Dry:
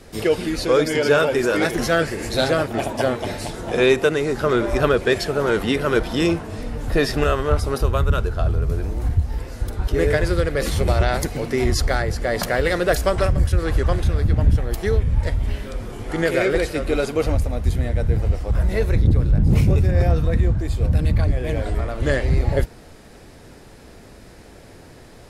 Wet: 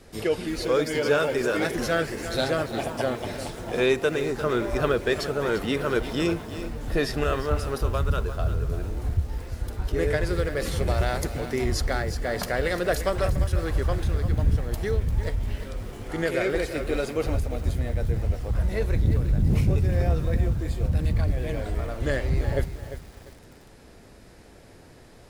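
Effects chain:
feedback echo at a low word length 347 ms, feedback 35%, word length 6 bits, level −11 dB
level −6 dB

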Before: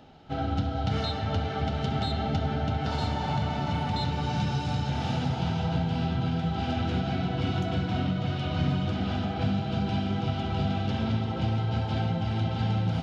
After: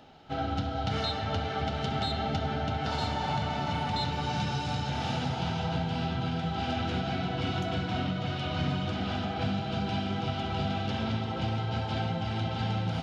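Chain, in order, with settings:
low-shelf EQ 400 Hz −6.5 dB
level +1.5 dB

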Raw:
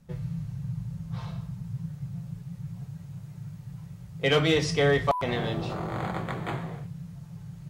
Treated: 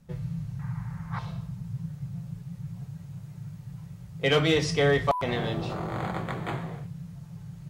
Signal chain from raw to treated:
0:00.59–0:01.19: flat-topped bell 1,300 Hz +15.5 dB

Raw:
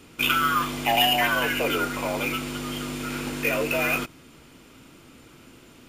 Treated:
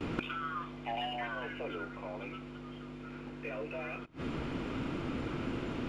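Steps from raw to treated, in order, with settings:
noise gate with hold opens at −41 dBFS
high-shelf EQ 4,900 Hz −10 dB
gate with flip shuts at −30 dBFS, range −27 dB
head-to-tape spacing loss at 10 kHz 20 dB
level +14.5 dB

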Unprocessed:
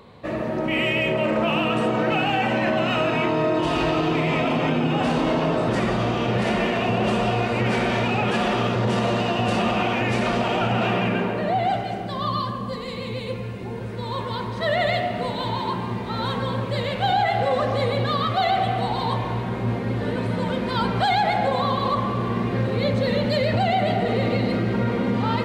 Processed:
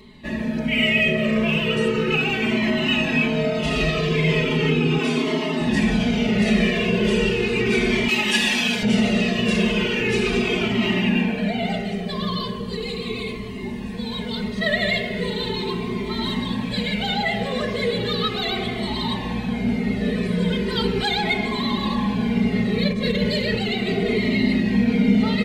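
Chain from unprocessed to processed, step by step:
flat-topped bell 910 Hz −12 dB
0:04.98–0:05.61: high-pass filter 240 Hz 12 dB per octave
0:08.08–0:08.83: spectral tilt +3.5 dB per octave
0:22.82–0:23.23: compressor whose output falls as the input rises −25 dBFS, ratio −0.5
comb filter 4.7 ms, depth 90%
tape delay 393 ms, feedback 89%, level −12.5 dB, low-pass 1,800 Hz
flanger whose copies keep moving one way falling 0.37 Hz
level +6.5 dB

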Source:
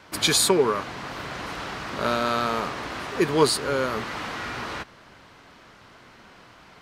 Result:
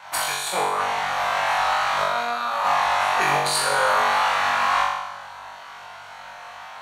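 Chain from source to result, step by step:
low shelf with overshoot 520 Hz −13.5 dB, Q 3
notch filter 5,000 Hz, Q 7.4
compressor whose output falls as the input rises −27 dBFS, ratio −0.5
flutter between parallel walls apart 3.6 metres, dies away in 0.97 s
level +1 dB

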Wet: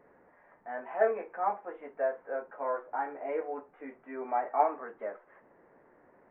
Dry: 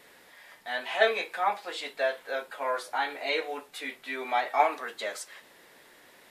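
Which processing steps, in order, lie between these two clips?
Gaussian smoothing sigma 6.6 samples

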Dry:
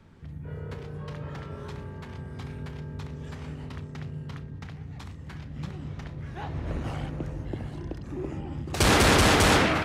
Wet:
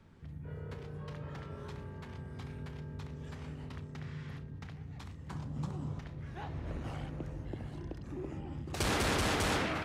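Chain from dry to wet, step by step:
0:04.06–0:04.35: healed spectral selection 860–9,200 Hz before
0:05.30–0:05.99: graphic EQ with 10 bands 125 Hz +7 dB, 250 Hz +5 dB, 500 Hz +4 dB, 1,000 Hz +11 dB, 2,000 Hz −6 dB, 8,000 Hz +10 dB
downward compressor 1.5 to 1, threshold −34 dBFS, peak gain reduction 6.5 dB
level −5.5 dB

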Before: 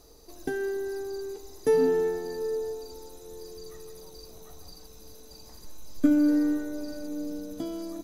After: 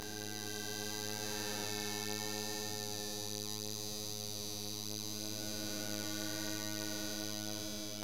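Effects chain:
spectrum smeared in time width 1,200 ms
low-pass filter 2,800 Hz 6 dB per octave
flat-topped bell 740 Hz −15 dB 3 octaves
phases set to zero 105 Hz
multi-voice chorus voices 2, 0.71 Hz, delay 25 ms, depth 4.6 ms
every bin compressed towards the loudest bin 4 to 1
level +12 dB

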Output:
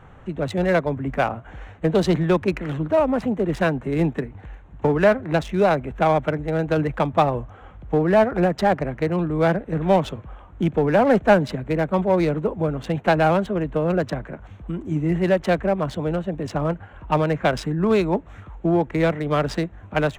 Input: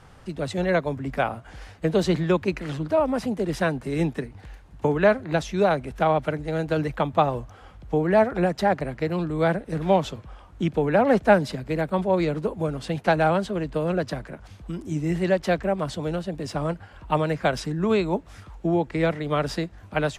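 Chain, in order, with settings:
adaptive Wiener filter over 9 samples
in parallel at −5 dB: hard clipping −19.5 dBFS, distortion −9 dB

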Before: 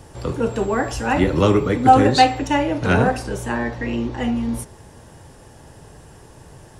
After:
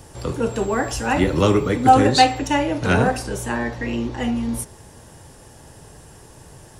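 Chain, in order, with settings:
high-shelf EQ 4,700 Hz +7 dB
level −1 dB

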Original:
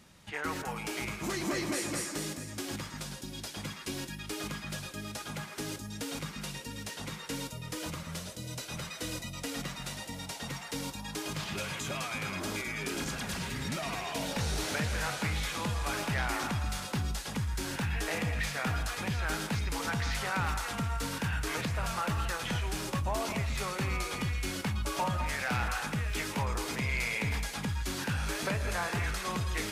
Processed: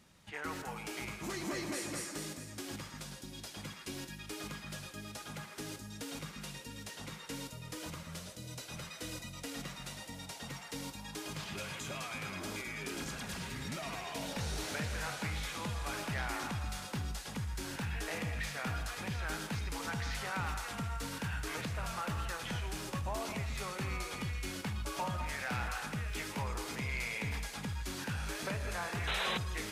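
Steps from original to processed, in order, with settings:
feedback echo with a high-pass in the loop 76 ms, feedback 66%, level −14.5 dB
sound drawn into the spectrogram noise, 0:29.07–0:29.38, 400–4,100 Hz −30 dBFS
level −5.5 dB

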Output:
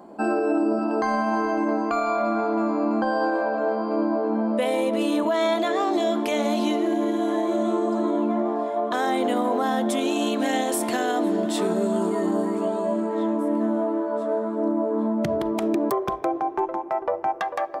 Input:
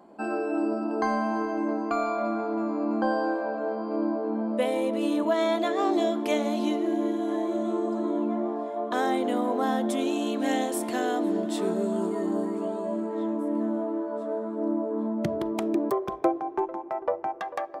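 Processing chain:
parametric band 2,700 Hz −4 dB 1.6 octaves, from 0:00.79 310 Hz
brickwall limiter −22.5 dBFS, peak gain reduction 9.5 dB
level +8 dB

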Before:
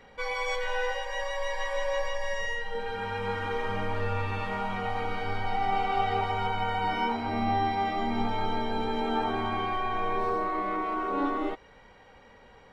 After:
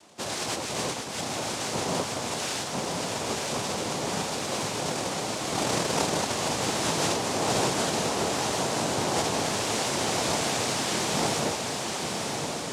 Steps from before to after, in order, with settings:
cochlear-implant simulation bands 2
feedback delay with all-pass diffusion 1,042 ms, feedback 65%, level −4 dB

